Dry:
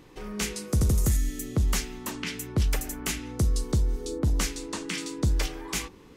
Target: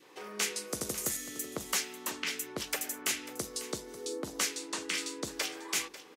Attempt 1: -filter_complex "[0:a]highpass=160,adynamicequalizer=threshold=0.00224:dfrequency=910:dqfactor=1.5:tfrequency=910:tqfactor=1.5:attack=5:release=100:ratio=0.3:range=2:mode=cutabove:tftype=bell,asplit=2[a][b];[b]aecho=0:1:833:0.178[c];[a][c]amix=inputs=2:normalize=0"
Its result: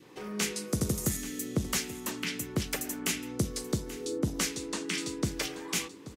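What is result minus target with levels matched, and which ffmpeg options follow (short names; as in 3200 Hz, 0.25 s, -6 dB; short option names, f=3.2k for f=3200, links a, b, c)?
125 Hz band +15.0 dB; echo 0.289 s late
-filter_complex "[0:a]highpass=460,adynamicequalizer=threshold=0.00224:dfrequency=910:dqfactor=1.5:tfrequency=910:tqfactor=1.5:attack=5:release=100:ratio=0.3:range=2:mode=cutabove:tftype=bell,asplit=2[a][b];[b]aecho=0:1:544:0.178[c];[a][c]amix=inputs=2:normalize=0"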